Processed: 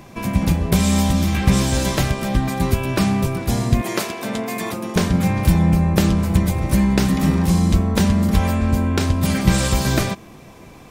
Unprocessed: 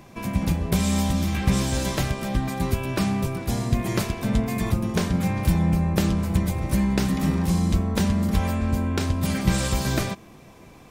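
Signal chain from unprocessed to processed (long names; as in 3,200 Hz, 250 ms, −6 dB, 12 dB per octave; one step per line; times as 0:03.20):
0:03.81–0:04.96: high-pass filter 320 Hz 12 dB per octave
level +5.5 dB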